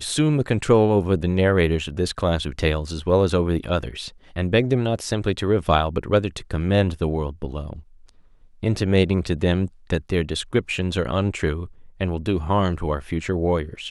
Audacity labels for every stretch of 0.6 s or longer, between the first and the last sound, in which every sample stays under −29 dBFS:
7.760000	8.630000	silence